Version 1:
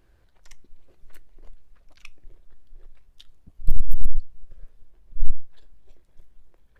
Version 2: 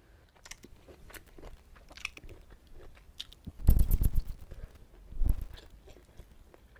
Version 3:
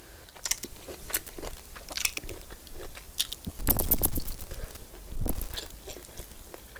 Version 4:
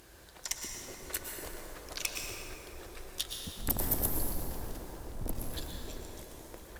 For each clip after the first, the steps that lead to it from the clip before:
HPF 50 Hz 12 dB/oct; AGC gain up to 5 dB; lo-fi delay 0.121 s, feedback 35%, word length 8-bit, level -12 dB; gain +3.5 dB
in parallel at -9.5 dB: sine folder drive 20 dB, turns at -10 dBFS; on the sum: tone controls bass -6 dB, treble +11 dB; gain -3.5 dB
band-limited delay 0.377 s, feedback 77%, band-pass 600 Hz, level -10 dB; plate-style reverb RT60 3.3 s, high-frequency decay 0.45×, pre-delay 95 ms, DRR 0 dB; gain -6.5 dB

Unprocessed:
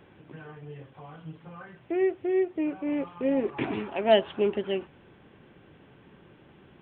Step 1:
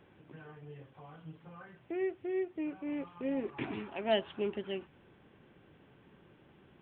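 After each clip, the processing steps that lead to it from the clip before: dynamic EQ 550 Hz, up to -4 dB, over -40 dBFS, Q 0.91; gain -6.5 dB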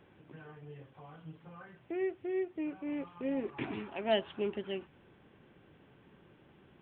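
nothing audible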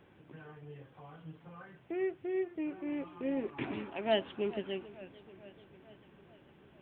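warbling echo 0.442 s, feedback 61%, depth 127 cents, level -18 dB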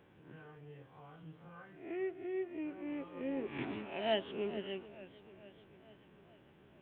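spectral swells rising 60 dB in 0.53 s; gain -4.5 dB

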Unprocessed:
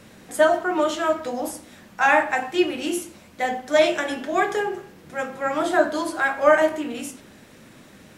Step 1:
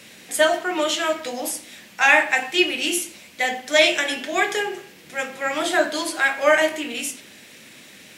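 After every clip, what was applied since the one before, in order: HPF 240 Hz 6 dB/oct; resonant high shelf 1700 Hz +8 dB, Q 1.5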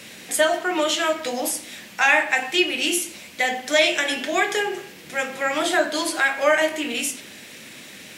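compressor 1.5:1, threshold -28 dBFS, peak gain reduction 6.5 dB; gain +4 dB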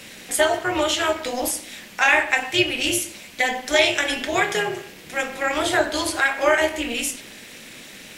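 AM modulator 240 Hz, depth 45%; gain +3 dB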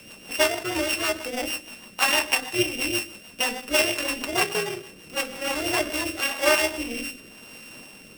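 sample sorter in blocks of 16 samples; rotary speaker horn 6.3 Hz, later 0.9 Hz, at 5.4; gain -1.5 dB

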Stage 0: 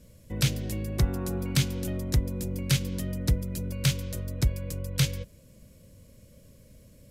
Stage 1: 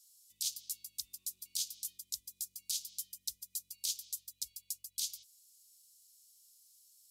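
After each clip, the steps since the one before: inverse Chebyshev high-pass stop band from 1700 Hz, stop band 50 dB; limiter -24 dBFS, peak gain reduction 9.5 dB; gain +2 dB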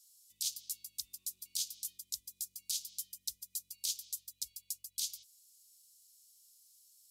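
nothing audible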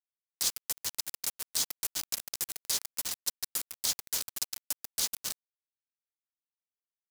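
reverse delay 0.224 s, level -5 dB; bit-crush 6-bit; gain +5.5 dB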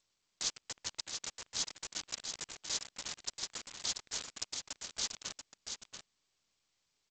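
in parallel at -9 dB: hard clip -31 dBFS, distortion -15 dB; on the sum: echo 0.685 s -6.5 dB; gain -4.5 dB; G.722 64 kbps 16000 Hz

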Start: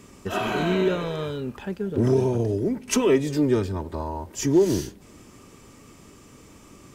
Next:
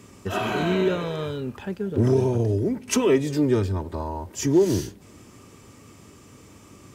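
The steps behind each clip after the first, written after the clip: HPF 53 Hz; bell 100 Hz +6 dB 0.39 oct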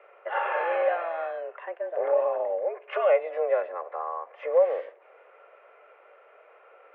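mistuned SSB +170 Hz 350–2200 Hz

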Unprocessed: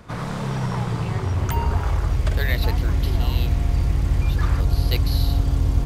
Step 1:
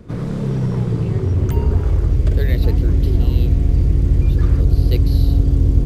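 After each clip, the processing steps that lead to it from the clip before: resonant low shelf 580 Hz +11 dB, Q 1.5; gain -5.5 dB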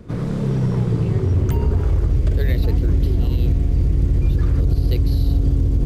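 limiter -9.5 dBFS, peak gain reduction 8 dB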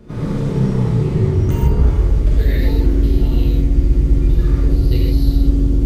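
non-linear reverb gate 0.18 s flat, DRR -6 dB; gain -3.5 dB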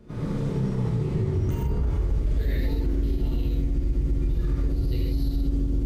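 limiter -9 dBFS, peak gain reduction 7.5 dB; gain -8 dB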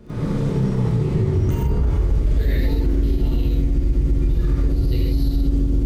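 crackle 11/s -45 dBFS; gain +6 dB

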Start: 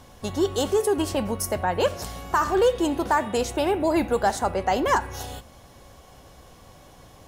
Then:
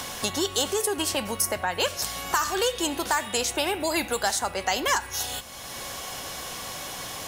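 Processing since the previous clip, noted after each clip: tilt shelf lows -9 dB, about 1300 Hz; three-band squash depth 70%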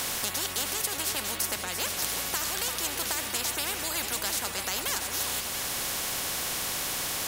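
echo with dull and thin repeats by turns 0.342 s, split 1300 Hz, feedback 51%, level -12 dB; spectral compressor 4:1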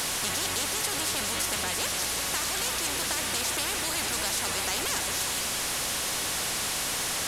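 delta modulation 64 kbps, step -23.5 dBFS

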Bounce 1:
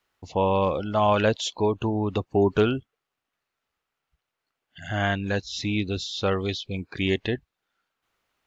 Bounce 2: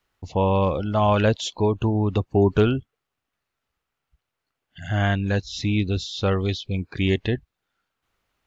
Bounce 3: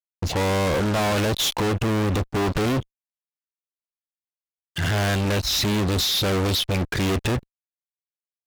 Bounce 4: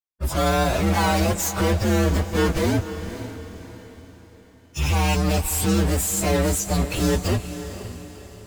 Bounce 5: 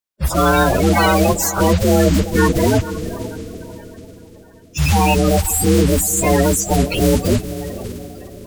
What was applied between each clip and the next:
low shelf 160 Hz +10 dB
limiter -13 dBFS, peak gain reduction 6.5 dB; fuzz box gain 42 dB, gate -49 dBFS; gain -7.5 dB
inharmonic rescaling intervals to 126%; diffused feedback echo 0.514 s, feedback 44%, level -11.5 dB; gain +3.5 dB
bin magnitudes rounded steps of 30 dB; gain +7 dB

